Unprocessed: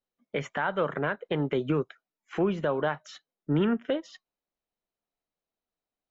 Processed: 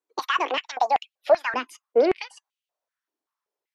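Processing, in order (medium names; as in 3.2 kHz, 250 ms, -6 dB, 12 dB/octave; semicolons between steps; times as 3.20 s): gliding tape speed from 195% -> 131%; step-sequenced high-pass 5.2 Hz 320–2900 Hz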